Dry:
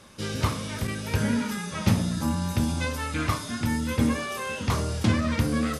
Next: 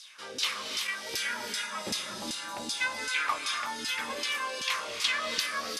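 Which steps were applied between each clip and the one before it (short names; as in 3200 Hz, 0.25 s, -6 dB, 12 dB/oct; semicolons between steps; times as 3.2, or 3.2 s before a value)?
tilt +4.5 dB/oct; LFO band-pass saw down 2.6 Hz 320–5000 Hz; non-linear reverb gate 0.37 s rising, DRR 5 dB; gain +3 dB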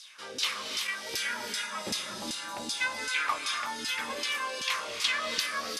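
nothing audible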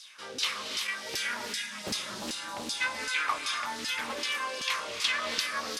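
low shelf 150 Hz +3 dB; spectral gain 1.54–1.84, 320–1600 Hz -11 dB; Doppler distortion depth 0.61 ms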